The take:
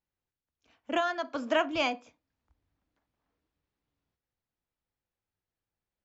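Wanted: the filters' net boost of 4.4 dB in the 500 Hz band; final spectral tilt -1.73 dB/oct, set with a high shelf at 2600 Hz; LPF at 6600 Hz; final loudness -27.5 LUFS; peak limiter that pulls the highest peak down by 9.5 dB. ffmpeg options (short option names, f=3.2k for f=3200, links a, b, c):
-af "lowpass=6.6k,equalizer=f=500:t=o:g=7,highshelf=f=2.6k:g=-6,volume=5dB,alimiter=limit=-17.5dB:level=0:latency=1"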